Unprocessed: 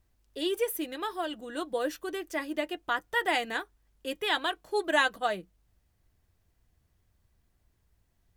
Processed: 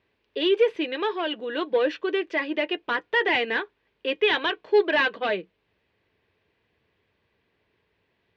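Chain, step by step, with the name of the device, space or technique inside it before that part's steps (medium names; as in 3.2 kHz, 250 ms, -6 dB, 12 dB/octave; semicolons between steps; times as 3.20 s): overdrive pedal into a guitar cabinet (overdrive pedal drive 20 dB, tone 3 kHz, clips at -10 dBFS; cabinet simulation 90–3900 Hz, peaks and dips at 430 Hz +8 dB, 730 Hz -7 dB, 1.3 kHz -7 dB, 2.5 kHz +4 dB); trim -1.5 dB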